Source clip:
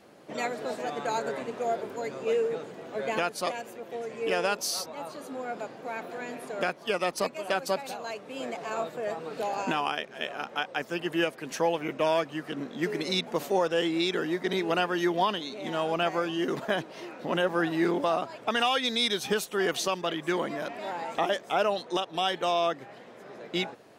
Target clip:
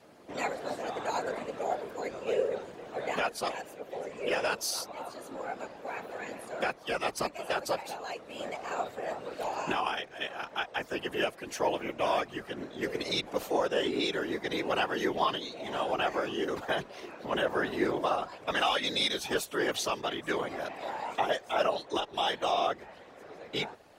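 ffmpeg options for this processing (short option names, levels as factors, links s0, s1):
-af "asubboost=boost=6:cutoff=67,afftfilt=real='hypot(re,im)*cos(2*PI*random(0))':imag='hypot(re,im)*sin(2*PI*random(1))':win_size=512:overlap=0.75,afreqshift=26,volume=1.58"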